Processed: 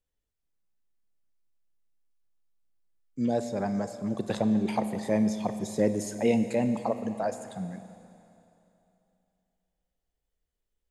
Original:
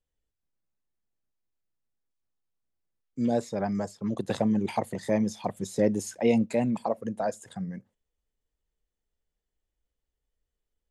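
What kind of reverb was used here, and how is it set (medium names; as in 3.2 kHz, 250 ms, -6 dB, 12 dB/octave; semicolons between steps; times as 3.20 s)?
Schroeder reverb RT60 2.9 s, combs from 29 ms, DRR 9.5 dB; trim -1 dB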